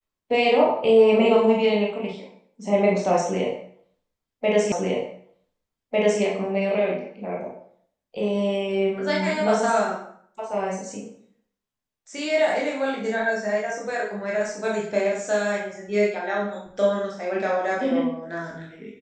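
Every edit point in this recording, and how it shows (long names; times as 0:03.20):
0:04.72: the same again, the last 1.5 s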